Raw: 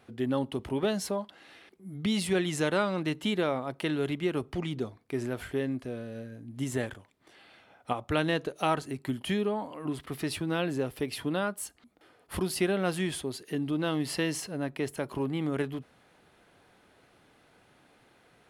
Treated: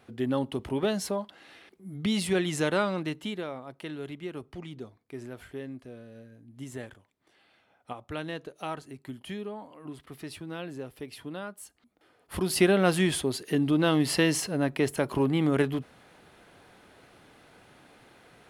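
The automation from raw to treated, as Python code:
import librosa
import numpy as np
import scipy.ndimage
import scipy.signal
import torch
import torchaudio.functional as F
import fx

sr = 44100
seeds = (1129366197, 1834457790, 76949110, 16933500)

y = fx.gain(x, sr, db=fx.line((2.89, 1.0), (3.48, -8.0), (11.65, -8.0), (12.34, -1.0), (12.58, 6.0)))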